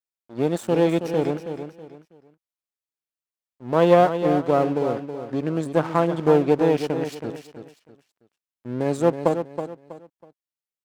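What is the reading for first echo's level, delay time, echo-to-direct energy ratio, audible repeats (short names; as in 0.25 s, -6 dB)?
-9.0 dB, 0.323 s, -8.5 dB, 3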